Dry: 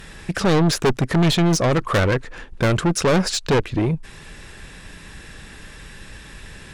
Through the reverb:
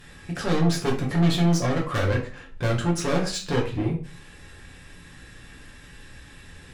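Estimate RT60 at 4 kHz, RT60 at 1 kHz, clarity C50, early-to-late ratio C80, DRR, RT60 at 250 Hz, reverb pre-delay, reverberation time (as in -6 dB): 0.30 s, 0.35 s, 8.5 dB, 13.5 dB, -2.5 dB, 0.50 s, 5 ms, 0.40 s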